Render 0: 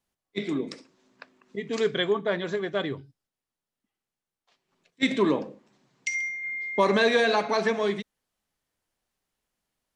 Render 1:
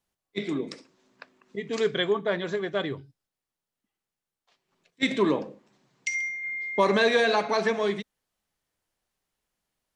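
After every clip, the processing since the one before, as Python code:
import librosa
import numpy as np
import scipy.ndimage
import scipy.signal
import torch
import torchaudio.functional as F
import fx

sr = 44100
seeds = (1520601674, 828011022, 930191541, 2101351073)

y = fx.peak_eq(x, sr, hz=250.0, db=-2.5, octaves=0.37)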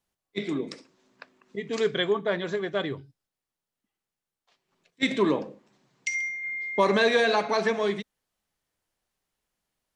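y = x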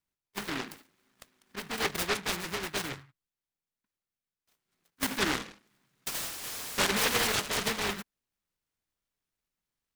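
y = fx.noise_mod_delay(x, sr, seeds[0], noise_hz=1500.0, depth_ms=0.47)
y = y * librosa.db_to_amplitude(-6.0)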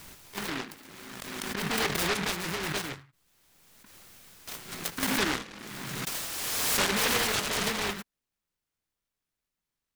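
y = fx.pre_swell(x, sr, db_per_s=24.0)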